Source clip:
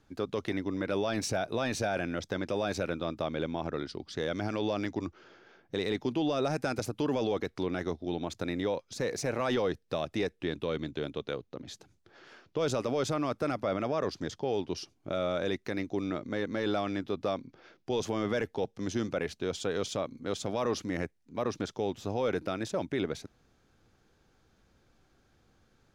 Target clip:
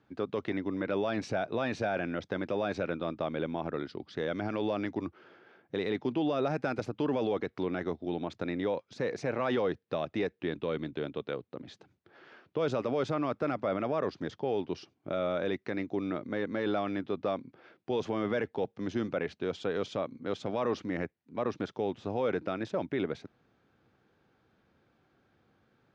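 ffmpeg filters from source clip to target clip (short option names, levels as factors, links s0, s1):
-af "highpass=110,lowpass=3000"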